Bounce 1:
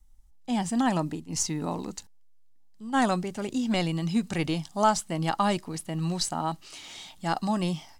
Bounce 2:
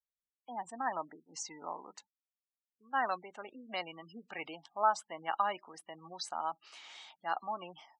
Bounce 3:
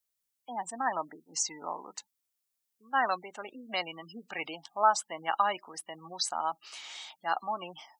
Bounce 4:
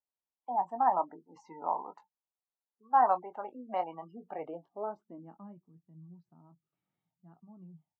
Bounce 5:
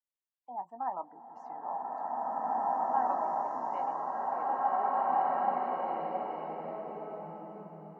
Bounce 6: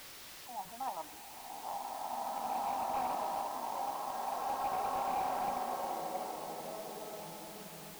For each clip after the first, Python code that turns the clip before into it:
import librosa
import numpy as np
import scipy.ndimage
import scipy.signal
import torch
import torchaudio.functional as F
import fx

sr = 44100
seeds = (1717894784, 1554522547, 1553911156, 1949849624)

y1 = fx.lowpass(x, sr, hz=1400.0, slope=6)
y1 = fx.spec_gate(y1, sr, threshold_db=-30, keep='strong')
y1 = scipy.signal.sosfilt(scipy.signal.butter(2, 960.0, 'highpass', fs=sr, output='sos'), y1)
y2 = fx.high_shelf(y1, sr, hz=4500.0, db=10.5)
y2 = y2 * 10.0 ** (4.0 / 20.0)
y3 = fx.chorus_voices(y2, sr, voices=4, hz=0.88, base_ms=20, depth_ms=4.3, mix_pct=25)
y3 = fx.filter_sweep_lowpass(y3, sr, from_hz=870.0, to_hz=150.0, start_s=4.18, end_s=5.61, q=2.9)
y3 = fx.noise_reduce_blind(y3, sr, reduce_db=7)
y4 = fx.rev_bloom(y3, sr, seeds[0], attack_ms=2310, drr_db=-10.0)
y4 = y4 * 10.0 ** (-8.5 / 20.0)
y5 = fx.delta_mod(y4, sr, bps=32000, step_db=-43.0)
y5 = fx.quant_dither(y5, sr, seeds[1], bits=8, dither='triangular')
y5 = y5 * 10.0 ** (-4.5 / 20.0)